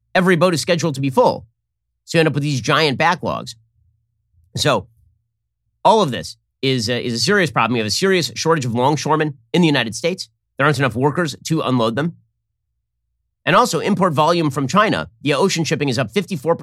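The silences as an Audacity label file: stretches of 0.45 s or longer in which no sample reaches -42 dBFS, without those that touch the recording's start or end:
1.440000	2.070000	silence
3.530000	4.550000	silence
4.860000	5.850000	silence
12.150000	13.460000	silence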